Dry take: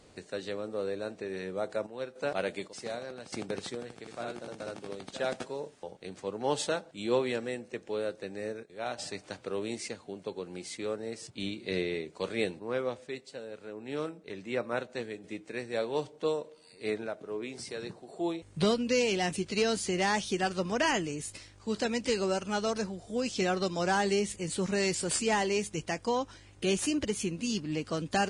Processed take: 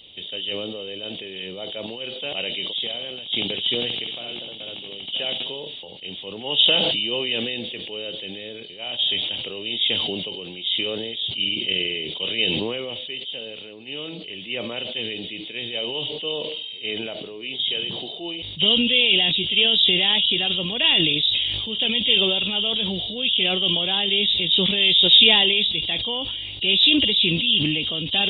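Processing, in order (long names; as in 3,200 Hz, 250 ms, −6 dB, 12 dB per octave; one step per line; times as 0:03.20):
hearing-aid frequency compression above 2,800 Hz 4 to 1
high shelf with overshoot 2,100 Hz +11.5 dB, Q 3
level that may fall only so fast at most 24 dB per second
level −2 dB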